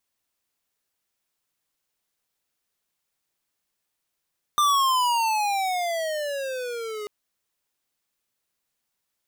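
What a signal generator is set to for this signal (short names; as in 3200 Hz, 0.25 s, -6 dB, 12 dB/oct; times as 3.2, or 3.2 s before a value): gliding synth tone square, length 2.49 s, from 1200 Hz, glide -18.5 st, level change -14 dB, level -19 dB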